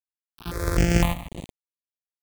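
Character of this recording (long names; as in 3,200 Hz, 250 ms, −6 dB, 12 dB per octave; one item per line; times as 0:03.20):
a buzz of ramps at a fixed pitch in blocks of 256 samples
sample-and-hold tremolo 4.4 Hz, depth 75%
a quantiser's noise floor 6 bits, dither none
notches that jump at a steady rate 3.9 Hz 570–5,300 Hz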